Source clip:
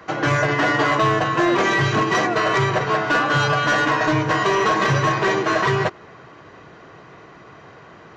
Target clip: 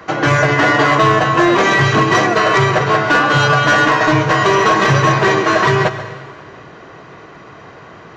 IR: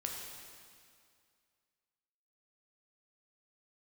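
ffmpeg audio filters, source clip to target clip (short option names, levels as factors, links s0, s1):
-filter_complex "[0:a]asplit=2[s0][s1];[1:a]atrim=start_sample=2205,asetrate=52920,aresample=44100,adelay=134[s2];[s1][s2]afir=irnorm=-1:irlink=0,volume=0.316[s3];[s0][s3]amix=inputs=2:normalize=0,volume=2"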